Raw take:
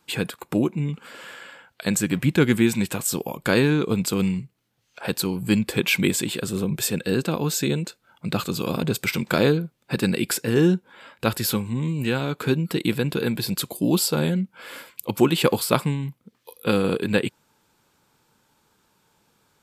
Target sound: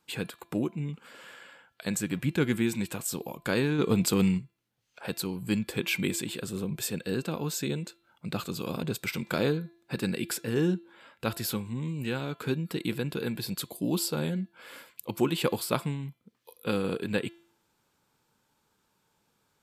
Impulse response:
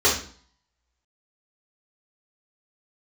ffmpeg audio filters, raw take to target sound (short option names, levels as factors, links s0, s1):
-filter_complex "[0:a]bandreject=f=339.7:t=h:w=4,bandreject=f=679.4:t=h:w=4,bandreject=f=1019.1:t=h:w=4,bandreject=f=1358.8:t=h:w=4,bandreject=f=1698.5:t=h:w=4,bandreject=f=2038.2:t=h:w=4,bandreject=f=2377.9:t=h:w=4,bandreject=f=2717.6:t=h:w=4,bandreject=f=3057.3:t=h:w=4,bandreject=f=3397:t=h:w=4,bandreject=f=3736.7:t=h:w=4,bandreject=f=4076.4:t=h:w=4,bandreject=f=4416.1:t=h:w=4,asplit=3[s0][s1][s2];[s0]afade=t=out:st=3.78:d=0.02[s3];[s1]acontrast=74,afade=t=in:st=3.78:d=0.02,afade=t=out:st=4.37:d=0.02[s4];[s2]afade=t=in:st=4.37:d=0.02[s5];[s3][s4][s5]amix=inputs=3:normalize=0,volume=0.398"